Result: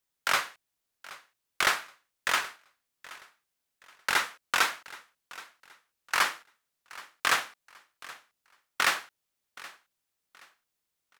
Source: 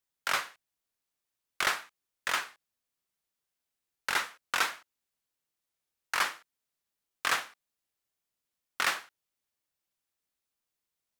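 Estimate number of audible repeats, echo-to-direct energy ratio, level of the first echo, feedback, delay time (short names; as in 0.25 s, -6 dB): 2, -19.0 dB, -19.5 dB, 31%, 0.774 s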